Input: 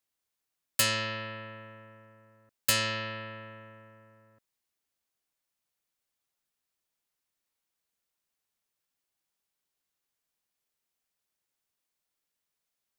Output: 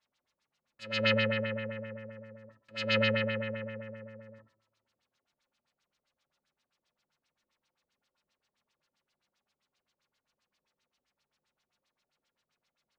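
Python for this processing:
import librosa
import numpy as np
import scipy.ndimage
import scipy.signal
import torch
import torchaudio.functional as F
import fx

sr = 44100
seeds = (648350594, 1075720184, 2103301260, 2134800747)

y = fx.over_compress(x, sr, threshold_db=-34.0, ratio=-0.5)
y = fx.rev_double_slope(y, sr, seeds[0], early_s=0.43, late_s=1.8, knee_db=-27, drr_db=-2.5)
y = fx.filter_lfo_lowpass(y, sr, shape='sine', hz=7.6, low_hz=380.0, high_hz=5100.0, q=1.7)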